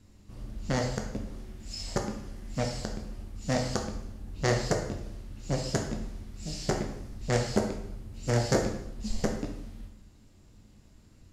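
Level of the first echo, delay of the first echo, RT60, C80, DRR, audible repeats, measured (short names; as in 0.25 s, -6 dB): none, none, 0.80 s, 8.5 dB, 1.5 dB, none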